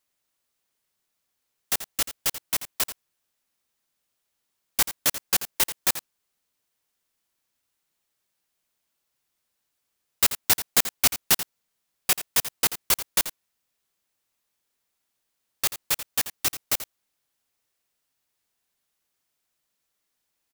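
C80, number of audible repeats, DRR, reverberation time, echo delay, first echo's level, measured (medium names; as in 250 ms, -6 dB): no reverb, 1, no reverb, no reverb, 85 ms, -12.5 dB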